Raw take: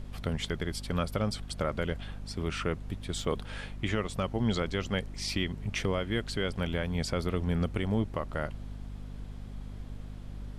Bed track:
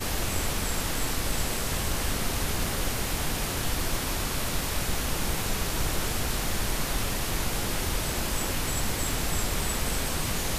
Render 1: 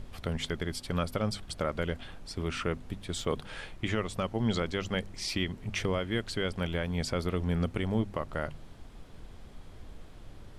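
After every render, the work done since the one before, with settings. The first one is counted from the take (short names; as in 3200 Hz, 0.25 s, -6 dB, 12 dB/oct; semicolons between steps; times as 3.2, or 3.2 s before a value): de-hum 50 Hz, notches 5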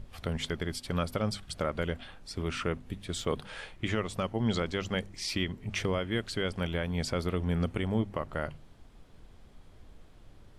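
noise print and reduce 6 dB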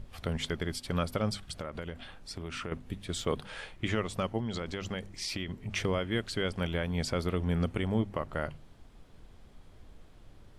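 1.37–2.72 compressor, threshold -34 dBFS; 4.39–5.74 compressor, threshold -31 dBFS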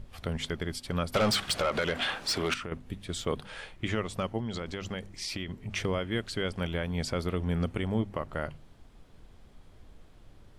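1.14–2.54 overdrive pedal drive 27 dB, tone 5200 Hz, clips at -16.5 dBFS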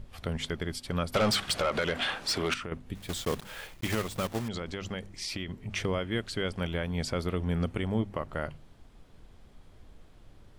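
2.95–4.5 block floating point 3-bit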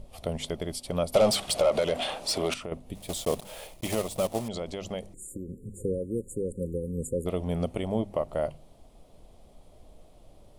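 5.14–7.26 spectral delete 540–6800 Hz; fifteen-band EQ 100 Hz -4 dB, 630 Hz +11 dB, 1600 Hz -12 dB, 10000 Hz +8 dB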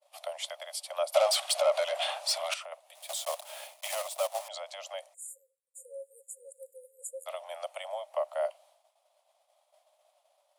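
steep high-pass 570 Hz 96 dB/oct; expander -56 dBFS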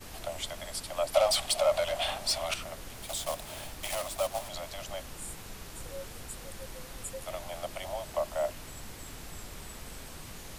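add bed track -16 dB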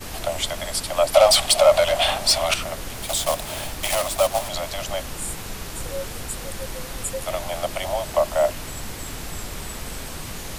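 gain +11.5 dB; limiter -2 dBFS, peak gain reduction 2 dB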